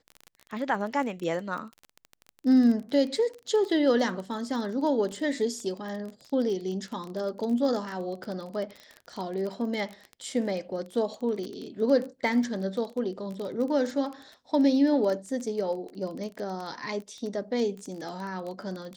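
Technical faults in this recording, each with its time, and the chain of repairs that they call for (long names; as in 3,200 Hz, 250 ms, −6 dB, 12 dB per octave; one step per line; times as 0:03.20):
surface crackle 23 per second −32 dBFS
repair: click removal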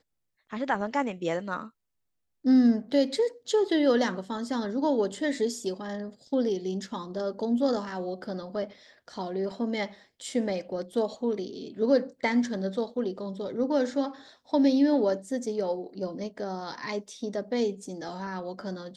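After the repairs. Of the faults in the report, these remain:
none of them is left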